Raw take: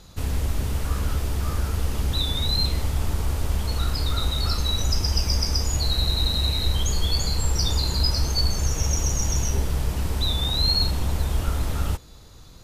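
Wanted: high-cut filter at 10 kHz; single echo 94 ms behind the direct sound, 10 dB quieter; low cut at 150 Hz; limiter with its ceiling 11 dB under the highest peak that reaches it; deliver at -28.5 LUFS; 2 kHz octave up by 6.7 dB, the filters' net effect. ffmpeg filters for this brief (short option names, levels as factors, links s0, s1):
-af "highpass=150,lowpass=10000,equalizer=f=2000:t=o:g=8.5,alimiter=limit=0.075:level=0:latency=1,aecho=1:1:94:0.316,volume=1.19"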